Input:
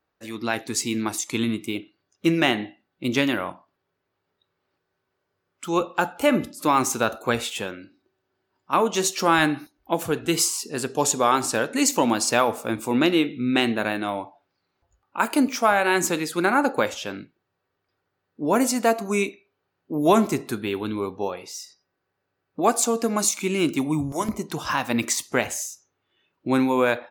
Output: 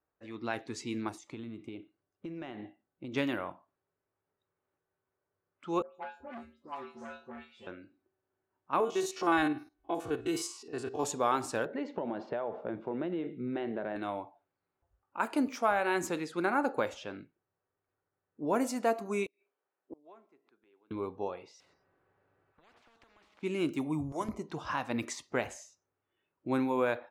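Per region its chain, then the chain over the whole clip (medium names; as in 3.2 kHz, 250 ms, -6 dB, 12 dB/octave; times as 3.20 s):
1.09–3.14 s: peaking EQ 2.9 kHz -4.5 dB 2.9 oct + compression 12:1, threshold -28 dBFS
5.82–7.67 s: feedback comb 77 Hz, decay 0.27 s, harmonics odd, mix 100% + phase dispersion highs, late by 144 ms, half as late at 2.4 kHz + transformer saturation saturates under 1.4 kHz
8.80–11.04 s: spectrogram pixelated in time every 50 ms + comb 2.7 ms, depth 57%
11.65–13.96 s: cabinet simulation 120–2900 Hz, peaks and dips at 180 Hz +10 dB, 260 Hz -5 dB, 390 Hz +6 dB, 610 Hz +6 dB, 1.2 kHz -7 dB, 2.5 kHz -10 dB + compression 10:1, threshold -21 dBFS
19.26–20.91 s: high-pass 370 Hz + inverted gate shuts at -26 dBFS, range -28 dB
21.60–23.43 s: compression, threshold -34 dBFS + spectrum-flattening compressor 10:1
whole clip: treble shelf 2.3 kHz -9 dB; level-controlled noise filter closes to 2.7 kHz, open at -20 dBFS; peaking EQ 200 Hz -3.5 dB 1 oct; trim -7.5 dB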